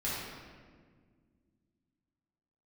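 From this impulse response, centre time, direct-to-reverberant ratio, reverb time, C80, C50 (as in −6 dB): 107 ms, −9.5 dB, 1.7 s, 0.5 dB, −2.5 dB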